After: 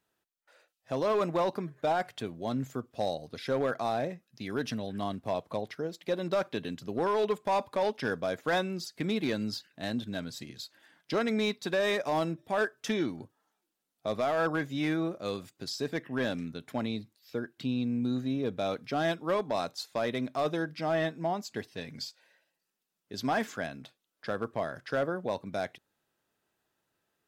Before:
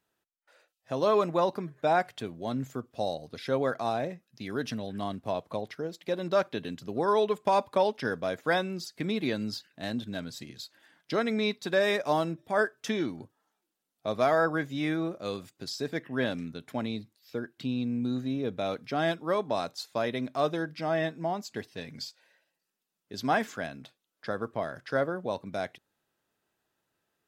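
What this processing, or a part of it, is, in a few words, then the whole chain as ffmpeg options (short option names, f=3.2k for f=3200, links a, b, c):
limiter into clipper: -af "alimiter=limit=-18.5dB:level=0:latency=1:release=16,asoftclip=type=hard:threshold=-22dB"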